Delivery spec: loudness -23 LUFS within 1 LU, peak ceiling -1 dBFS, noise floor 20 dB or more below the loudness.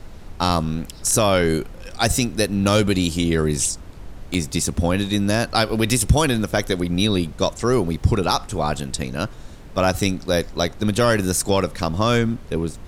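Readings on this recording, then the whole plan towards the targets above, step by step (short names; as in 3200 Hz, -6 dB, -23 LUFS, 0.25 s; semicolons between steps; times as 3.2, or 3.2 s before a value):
dropouts 1; longest dropout 1.5 ms; noise floor -39 dBFS; noise floor target -41 dBFS; loudness -21.0 LUFS; peak -4.5 dBFS; loudness target -23.0 LUFS
-> interpolate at 4.34, 1.5 ms; noise print and reduce 6 dB; gain -2 dB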